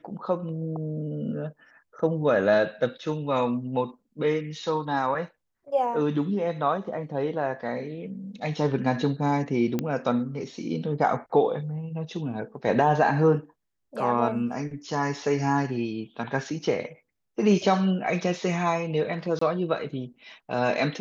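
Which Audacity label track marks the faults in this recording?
9.790000	9.790000	pop -14 dBFS
19.390000	19.410000	gap 24 ms

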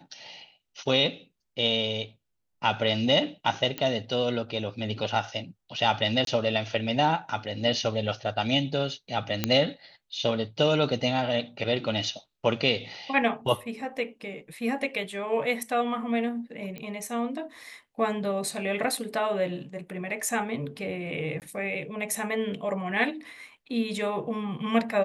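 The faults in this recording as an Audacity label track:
3.780000	3.780000	pop -15 dBFS
6.250000	6.270000	gap 22 ms
9.440000	9.440000	pop -8 dBFS
16.780000	16.780000	pop -24 dBFS
21.400000	21.420000	gap 18 ms

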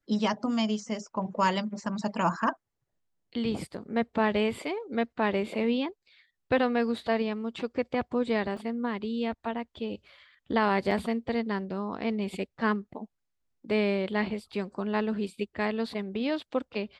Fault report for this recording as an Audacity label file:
8.570000	8.570000	gap 2.1 ms
10.910000	10.910000	gap 3.3 ms

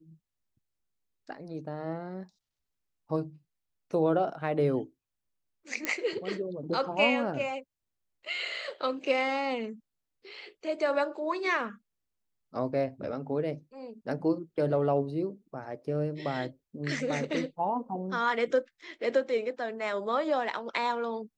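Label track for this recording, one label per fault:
5.850000	5.850000	pop -14 dBFS

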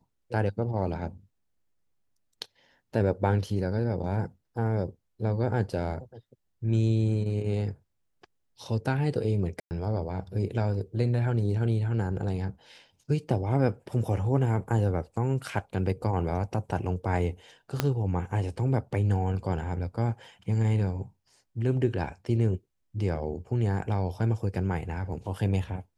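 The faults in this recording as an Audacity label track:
9.600000	9.710000	gap 0.109 s
17.800000	17.800000	pop -9 dBFS

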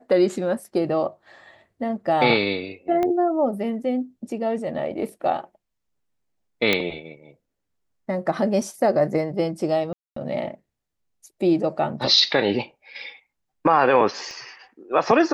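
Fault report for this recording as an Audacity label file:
3.030000	3.030000	pop -13 dBFS
6.730000	6.730000	pop -6 dBFS
9.930000	10.160000	gap 0.234 s
14.310000	14.310000	pop -26 dBFS

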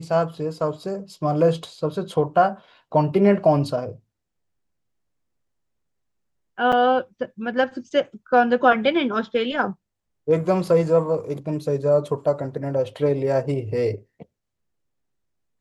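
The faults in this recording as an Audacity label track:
6.720000	6.730000	gap 6.2 ms

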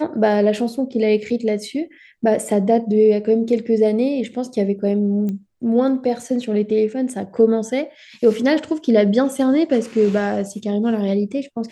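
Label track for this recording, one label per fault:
5.290000	5.290000	pop -16 dBFS

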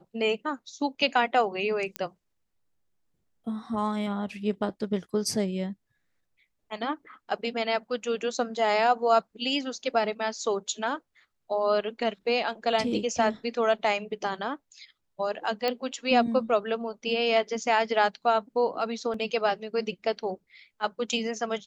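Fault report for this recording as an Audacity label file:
1.960000	1.960000	pop -14 dBFS
15.680000	15.680000	pop -15 dBFS
19.140000	19.140000	gap 2.9 ms

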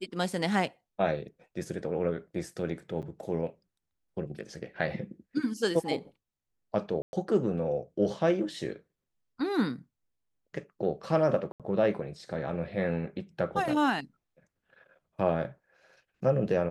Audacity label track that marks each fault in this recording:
3.020000	3.030000	gap 7.6 ms
7.020000	7.130000	gap 0.111 s
11.520000	11.600000	gap 77 ms

